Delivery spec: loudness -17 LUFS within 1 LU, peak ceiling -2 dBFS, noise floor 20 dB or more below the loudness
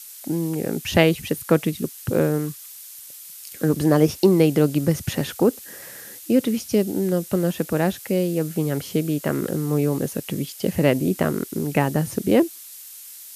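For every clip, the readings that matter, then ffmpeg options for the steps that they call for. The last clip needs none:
noise floor -41 dBFS; noise floor target -42 dBFS; loudness -22.0 LUFS; peak -2.0 dBFS; loudness target -17.0 LUFS
-> -af "afftdn=nr=6:nf=-41"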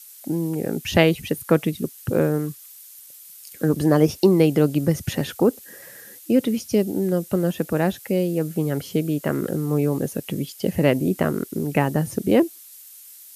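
noise floor -45 dBFS; loudness -22.0 LUFS; peak -2.0 dBFS; loudness target -17.0 LUFS
-> -af "volume=5dB,alimiter=limit=-2dB:level=0:latency=1"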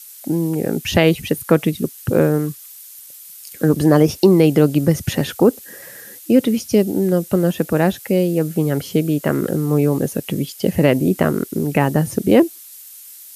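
loudness -17.5 LUFS; peak -2.0 dBFS; noise floor -40 dBFS

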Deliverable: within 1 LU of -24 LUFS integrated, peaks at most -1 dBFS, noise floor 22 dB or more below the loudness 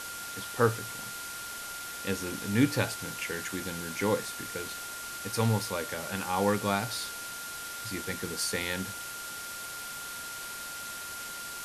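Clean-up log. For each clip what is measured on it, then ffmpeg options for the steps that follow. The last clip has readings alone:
steady tone 1400 Hz; tone level -41 dBFS; noise floor -40 dBFS; noise floor target -55 dBFS; loudness -32.5 LUFS; peak -10.0 dBFS; loudness target -24.0 LUFS
-> -af "bandreject=f=1.4k:w=30"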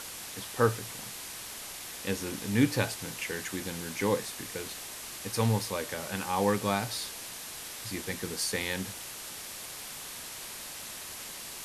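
steady tone none; noise floor -42 dBFS; noise floor target -55 dBFS
-> -af "afftdn=nr=13:nf=-42"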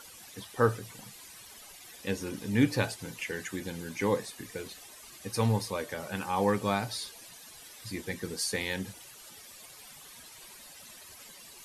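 noise floor -51 dBFS; noise floor target -55 dBFS
-> -af "afftdn=nr=6:nf=-51"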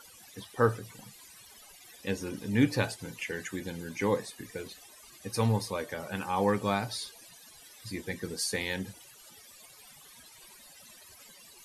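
noise floor -54 dBFS; noise floor target -55 dBFS
-> -af "afftdn=nr=6:nf=-54"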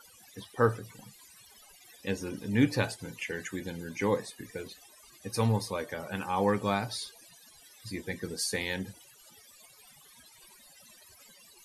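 noise floor -57 dBFS; loudness -32.5 LUFS; peak -10.5 dBFS; loudness target -24.0 LUFS
-> -af "volume=8.5dB"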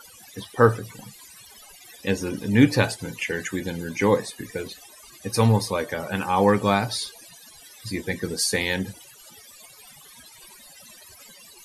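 loudness -24.0 LUFS; peak -2.0 dBFS; noise floor -49 dBFS

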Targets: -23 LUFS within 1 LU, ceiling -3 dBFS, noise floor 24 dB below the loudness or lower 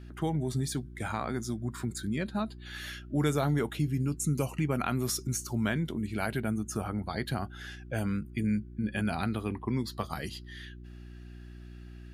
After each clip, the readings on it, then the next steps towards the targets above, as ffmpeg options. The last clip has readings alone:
hum 60 Hz; harmonics up to 360 Hz; hum level -45 dBFS; loudness -32.5 LUFS; peak -14.0 dBFS; loudness target -23.0 LUFS
-> -af "bandreject=f=60:t=h:w=4,bandreject=f=120:t=h:w=4,bandreject=f=180:t=h:w=4,bandreject=f=240:t=h:w=4,bandreject=f=300:t=h:w=4,bandreject=f=360:t=h:w=4"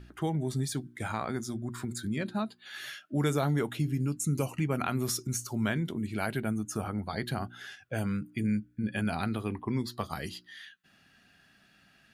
hum none; loudness -33.0 LUFS; peak -14.5 dBFS; loudness target -23.0 LUFS
-> -af "volume=10dB"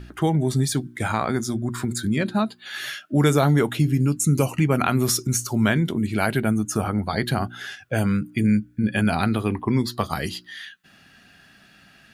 loudness -23.0 LUFS; peak -4.5 dBFS; noise floor -54 dBFS

